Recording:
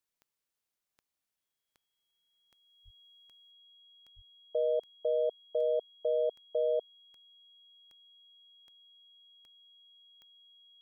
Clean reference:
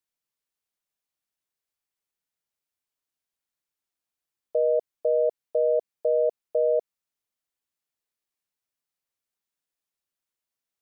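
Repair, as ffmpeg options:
ffmpeg -i in.wav -filter_complex "[0:a]adeclick=threshold=4,bandreject=frequency=3300:width=30,asplit=3[link_01][link_02][link_03];[link_01]afade=type=out:start_time=2.84:duration=0.02[link_04];[link_02]highpass=frequency=140:width=0.5412,highpass=frequency=140:width=1.3066,afade=type=in:start_time=2.84:duration=0.02,afade=type=out:start_time=2.96:duration=0.02[link_05];[link_03]afade=type=in:start_time=2.96:duration=0.02[link_06];[link_04][link_05][link_06]amix=inputs=3:normalize=0,asplit=3[link_07][link_08][link_09];[link_07]afade=type=out:start_time=4.15:duration=0.02[link_10];[link_08]highpass=frequency=140:width=0.5412,highpass=frequency=140:width=1.3066,afade=type=in:start_time=4.15:duration=0.02,afade=type=out:start_time=4.27:duration=0.02[link_11];[link_09]afade=type=in:start_time=4.27:duration=0.02[link_12];[link_10][link_11][link_12]amix=inputs=3:normalize=0,asetnsamples=nb_out_samples=441:pad=0,asendcmd='3.51 volume volume 7dB',volume=0dB" out.wav

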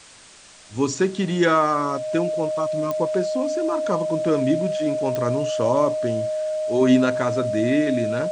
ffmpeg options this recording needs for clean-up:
ffmpeg -i in.wav -af "adeclick=threshold=4,bandreject=frequency=620:width=30,afwtdn=0.0063" out.wav

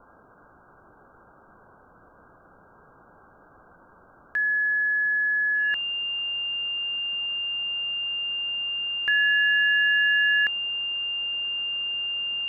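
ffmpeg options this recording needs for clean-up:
ffmpeg -i in.wav -af "bandreject=frequency=2800:width=30,afwtdn=0.0071" out.wav

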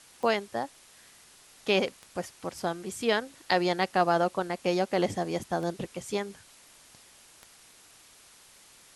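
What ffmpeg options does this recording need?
ffmpeg -i in.wav -af "adeclick=threshold=4,afwtdn=0.0022" out.wav

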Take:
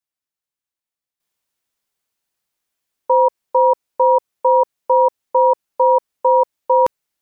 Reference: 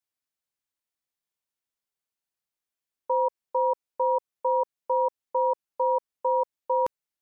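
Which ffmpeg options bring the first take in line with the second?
ffmpeg -i in.wav -af "asetnsamples=nb_out_samples=441:pad=0,asendcmd='1.2 volume volume -11dB',volume=0dB" out.wav

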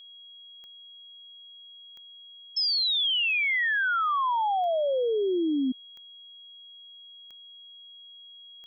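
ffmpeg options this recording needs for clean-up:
ffmpeg -i in.wav -af "adeclick=threshold=4,bandreject=frequency=3300:width=30,agate=range=-21dB:threshold=-41dB" out.wav

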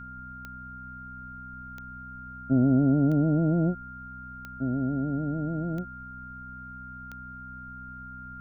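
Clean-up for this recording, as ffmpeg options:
ffmpeg -i in.wav -af "adeclick=threshold=4,bandreject=frequency=63:width_type=h:width=4,bandreject=frequency=126:width_type=h:width=4,bandreject=frequency=189:width_type=h:width=4,bandreject=frequency=252:width_type=h:width=4,bandreject=frequency=1400:width=30,agate=range=-21dB:threshold=-34dB" out.wav

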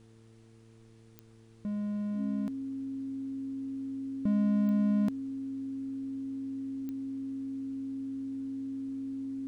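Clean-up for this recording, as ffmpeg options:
ffmpeg -i in.wav -af "adeclick=threshold=4,bandreject=frequency=112.6:width_type=h:width=4,bandreject=frequency=225.2:width_type=h:width=4,bandreject=frequency=337.8:width_type=h:width=4,bandreject=frequency=450.4:width_type=h:width=4,bandreject=frequency=270:width=30,agate=range=-21dB:threshold=-48dB" out.wav

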